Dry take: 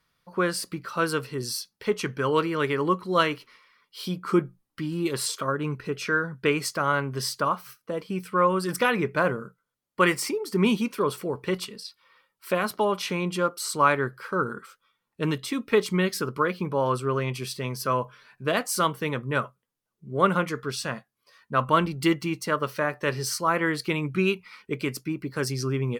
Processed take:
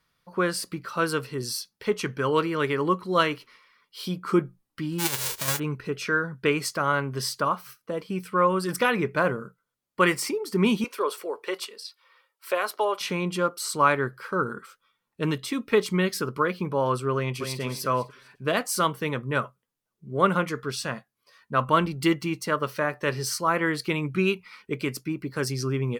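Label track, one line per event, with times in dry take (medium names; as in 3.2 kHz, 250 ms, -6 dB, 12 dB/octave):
4.980000	5.580000	formants flattened exponent 0.1
10.840000	13.010000	high-pass 390 Hz 24 dB/octave
17.150000	17.600000	echo throw 250 ms, feedback 30%, level -6.5 dB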